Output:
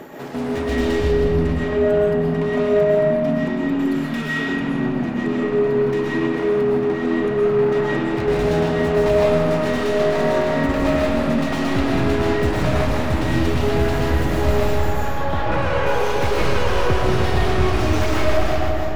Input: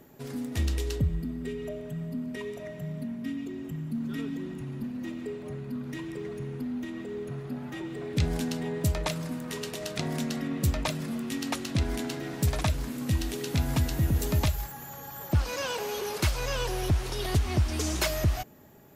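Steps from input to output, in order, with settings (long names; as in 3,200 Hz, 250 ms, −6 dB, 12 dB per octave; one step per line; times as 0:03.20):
stylus tracing distortion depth 0.17 ms
0:15.04–0:15.82: low-pass filter 4,800 Hz → 2,100 Hz 24 dB per octave
echo with a time of its own for lows and highs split 310 Hz, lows 604 ms, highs 160 ms, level −13.5 dB
shaped tremolo saw down 2.9 Hz, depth 95%
0:03.79–0:04.43: tilt shelving filter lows −7.5 dB, about 840 Hz
mid-hump overdrive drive 24 dB, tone 1,300 Hz, clips at −28 dBFS
comb and all-pass reverb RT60 2.3 s, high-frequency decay 0.5×, pre-delay 85 ms, DRR −6.5 dB
0:06.34–0:06.93: windowed peak hold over 3 samples
level +8 dB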